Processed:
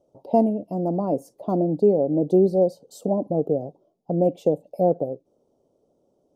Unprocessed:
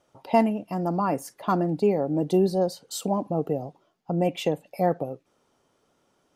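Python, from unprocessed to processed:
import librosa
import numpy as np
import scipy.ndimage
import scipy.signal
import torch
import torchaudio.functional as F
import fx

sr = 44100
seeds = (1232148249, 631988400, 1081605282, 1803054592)

y = fx.curve_eq(x, sr, hz=(120.0, 590.0, 1800.0, 3600.0, 5700.0), db=(0, 6, -30, -15, -11))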